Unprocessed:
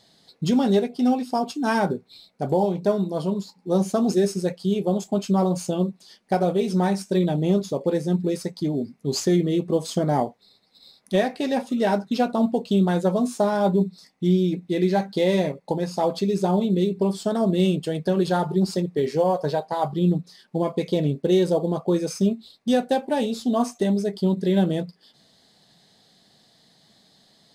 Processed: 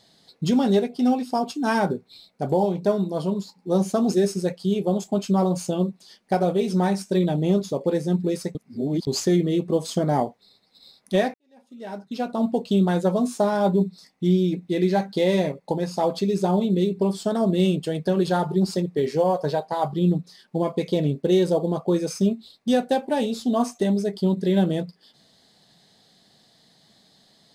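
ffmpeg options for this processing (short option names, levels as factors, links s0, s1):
-filter_complex "[0:a]asplit=4[s0][s1][s2][s3];[s0]atrim=end=8.552[s4];[s1]atrim=start=8.548:end=9.072,asetpts=PTS-STARTPTS,areverse[s5];[s2]atrim=start=9.068:end=11.34,asetpts=PTS-STARTPTS,afade=t=out:st=2.268:d=0.004:c=hsin[s6];[s3]atrim=start=11.34,asetpts=PTS-STARTPTS,afade=t=in:d=1.22:c=qua[s7];[s4][s5]acrossfade=d=0.004:c1=hsin:c2=hsin[s8];[s6][s7]concat=n=2:v=0:a=1[s9];[s8][s9]acrossfade=d=0.004:c1=hsin:c2=hsin"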